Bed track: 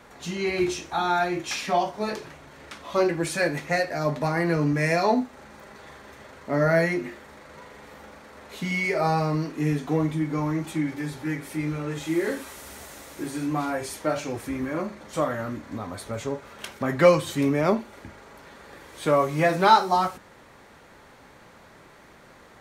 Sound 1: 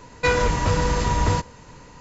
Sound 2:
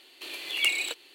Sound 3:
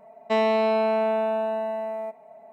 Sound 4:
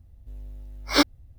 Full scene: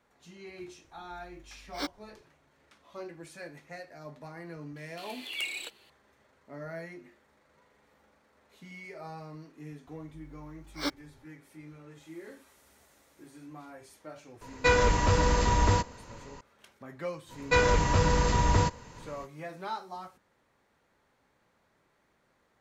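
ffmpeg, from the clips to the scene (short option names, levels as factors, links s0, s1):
-filter_complex "[4:a]asplit=2[s0][s1];[1:a]asplit=2[s2][s3];[0:a]volume=0.1[s4];[2:a]asoftclip=type=tanh:threshold=0.133[s5];[s2]equalizer=f=150:t=o:w=0.28:g=-8[s6];[s0]atrim=end=1.38,asetpts=PTS-STARTPTS,volume=0.158,afade=t=in:d=0.004:c=hsin,afade=t=out:st=1.376:d=0.004:c=hsin,adelay=840[s7];[s5]atrim=end=1.14,asetpts=PTS-STARTPTS,volume=0.422,afade=t=in:d=0.004:c=hsin,afade=t=out:st=1.136:d=0.004:c=hsin,adelay=4760[s8];[s1]atrim=end=1.38,asetpts=PTS-STARTPTS,volume=0.211,afade=t=in:d=0.004:c=hsin,afade=t=out:st=1.376:d=0.004:c=hsin,adelay=9870[s9];[s6]atrim=end=2,asetpts=PTS-STARTPTS,volume=0.708,afade=t=in:d=0.004:c=hsin,afade=t=out:st=1.996:d=0.004:c=hsin,adelay=14410[s10];[s3]atrim=end=2,asetpts=PTS-STARTPTS,volume=0.668,afade=t=in:d=0.05,afade=t=out:st=1.95:d=0.05,adelay=17280[s11];[s4][s7][s8][s9][s10][s11]amix=inputs=6:normalize=0"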